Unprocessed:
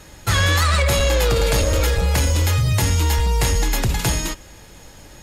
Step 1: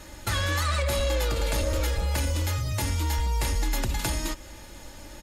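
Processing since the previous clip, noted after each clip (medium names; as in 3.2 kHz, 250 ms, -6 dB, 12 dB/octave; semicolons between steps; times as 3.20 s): compression 2.5:1, threshold -26 dBFS, peak gain reduction 7.5 dB; comb 3.4 ms, depth 47%; trim -2 dB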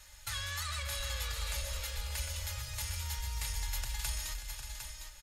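amplifier tone stack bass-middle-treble 10-0-10; on a send: multi-tap echo 304/453/583/755 ms -15.5/-11/-12.5/-7.5 dB; on the sum: trim -5.5 dB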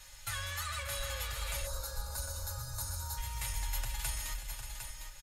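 time-frequency box 1.67–3.18 s, 1.7–3.6 kHz -18 dB; comb 7.4 ms, depth 50%; dynamic bell 4.8 kHz, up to -6 dB, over -54 dBFS, Q 0.9; trim +1.5 dB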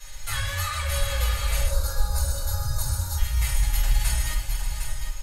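simulated room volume 250 m³, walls furnished, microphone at 5.4 m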